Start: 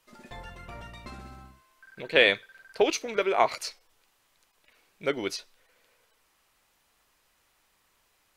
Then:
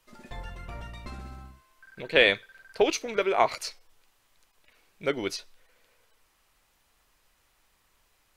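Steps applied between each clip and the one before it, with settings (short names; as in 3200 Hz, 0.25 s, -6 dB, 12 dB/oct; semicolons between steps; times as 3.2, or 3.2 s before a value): low shelf 76 Hz +10 dB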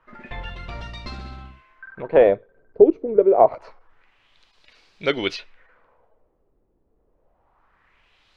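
LFO low-pass sine 0.26 Hz 380–4700 Hz; gain +5.5 dB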